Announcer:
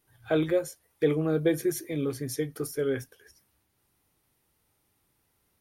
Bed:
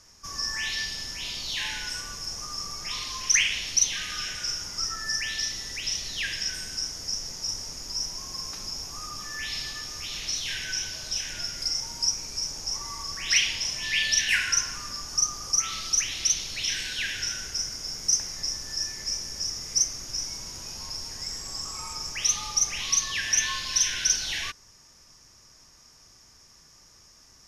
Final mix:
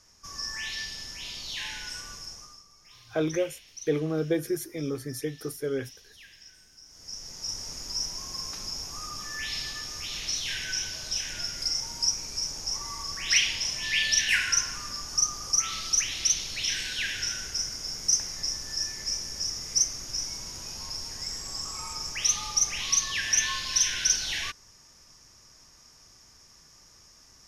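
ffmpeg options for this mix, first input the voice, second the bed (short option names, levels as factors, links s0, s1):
-filter_complex "[0:a]adelay=2850,volume=0.794[s0];[1:a]volume=6.31,afade=t=out:st=2.14:d=0.49:silence=0.149624,afade=t=in:st=6.85:d=0.88:silence=0.0944061[s1];[s0][s1]amix=inputs=2:normalize=0"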